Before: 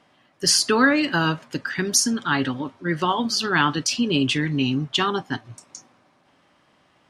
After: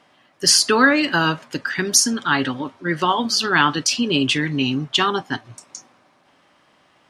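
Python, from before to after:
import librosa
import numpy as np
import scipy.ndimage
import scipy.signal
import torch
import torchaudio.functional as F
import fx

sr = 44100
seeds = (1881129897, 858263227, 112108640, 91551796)

y = fx.low_shelf(x, sr, hz=260.0, db=-6.0)
y = y * 10.0 ** (4.0 / 20.0)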